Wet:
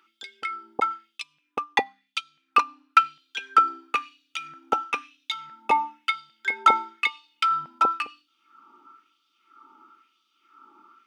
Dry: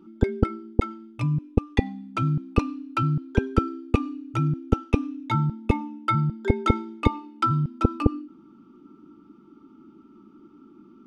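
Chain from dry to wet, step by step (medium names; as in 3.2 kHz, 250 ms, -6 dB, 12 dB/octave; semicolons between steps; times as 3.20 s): LFO high-pass sine 1 Hz 850–3600 Hz; 1.18–2.99 s: transient shaper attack +3 dB, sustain -9 dB; trim +5 dB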